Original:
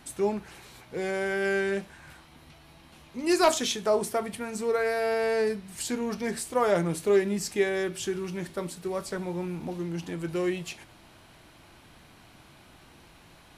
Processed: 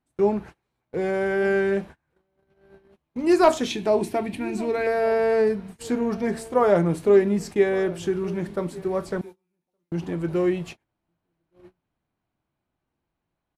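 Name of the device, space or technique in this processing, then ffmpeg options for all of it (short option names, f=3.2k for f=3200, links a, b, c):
through cloth: -filter_complex "[0:a]asettb=1/sr,asplit=3[a][b][c];[a]atrim=end=9.214[d];[b]atrim=start=9.21:end=9.92,asetpts=PTS-STARTPTS,afade=t=in:d=0.004:c=qsin,afade=t=out:st=0.706:d=0.004:c=qsin,aderivative[e];[c]atrim=start=9.916[f];[d][e]acrossfade=d=0.004:c1=hsin:c2=qsin[g];[g][f]acrossfade=d=0.004:c1=qsin:c2=hsin,highshelf=f=2.2k:g=-14,asplit=2[h][i];[i]adelay=1166,volume=-19dB,highshelf=f=4k:g=-26.2[j];[h][j]amix=inputs=2:normalize=0,agate=range=-32dB:threshold=-44dB:ratio=16:detection=peak,asettb=1/sr,asplit=3[k][l][m];[k]atrim=end=3.704[n];[l]atrim=start=3.7:end=4.87,asetpts=PTS-STARTPTS,afade=t=in:d=0.004:c=qsin,afade=t=out:st=1.166:d=0.004:c=qsin,equalizer=f=315:t=o:w=0.33:g=10,equalizer=f=500:t=o:w=0.33:g=-10,equalizer=f=1.25k:t=o:w=0.33:g=-11,equalizer=f=2.5k:t=o:w=0.33:g=9,equalizer=f=4k:t=o:w=0.33:g=6[o];[m]atrim=start=4.866[p];[n][o]acrossfade=d=0.004:c1=hsin:c2=qsin[q];[q][p]acrossfade=d=0.004:c1=qsin:c2=hsin,volume=6.5dB"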